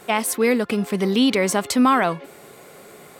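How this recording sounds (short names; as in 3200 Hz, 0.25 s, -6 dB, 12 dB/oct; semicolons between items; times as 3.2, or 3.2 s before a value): noise floor -46 dBFS; spectral tilt -4.0 dB/oct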